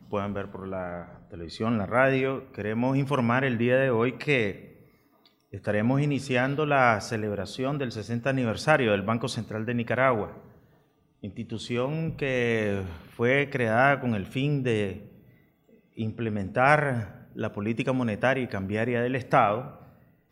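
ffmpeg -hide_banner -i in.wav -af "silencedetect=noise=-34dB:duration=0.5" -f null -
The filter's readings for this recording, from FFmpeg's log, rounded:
silence_start: 4.52
silence_end: 5.54 | silence_duration: 1.02
silence_start: 10.31
silence_end: 11.24 | silence_duration: 0.93
silence_start: 14.98
silence_end: 15.98 | silence_duration: 1.00
silence_start: 19.70
silence_end: 20.31 | silence_duration: 0.62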